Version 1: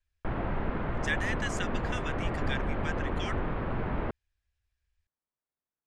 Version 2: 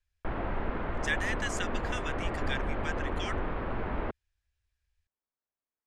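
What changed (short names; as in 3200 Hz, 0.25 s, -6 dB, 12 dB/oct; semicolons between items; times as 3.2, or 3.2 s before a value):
speech: add high shelf 6500 Hz +4.5 dB; background: add bell 140 Hz -7 dB 1.2 oct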